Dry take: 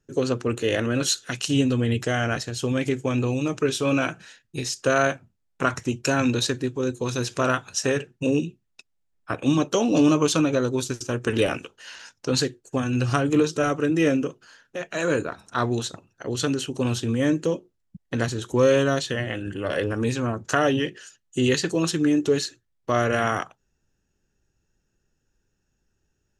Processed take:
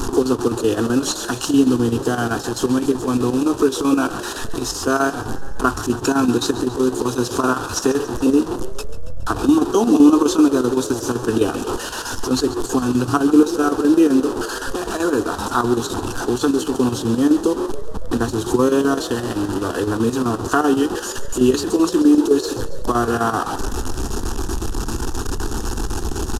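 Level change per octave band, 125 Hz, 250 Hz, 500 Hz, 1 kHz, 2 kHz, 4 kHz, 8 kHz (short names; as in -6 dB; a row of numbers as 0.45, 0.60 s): 0.0, +8.0, +4.5, +7.0, +1.0, +2.0, +4.5 dB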